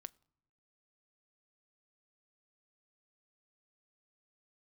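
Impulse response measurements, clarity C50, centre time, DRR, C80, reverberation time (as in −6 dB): 27.5 dB, 1 ms, 16.5 dB, 29.5 dB, non-exponential decay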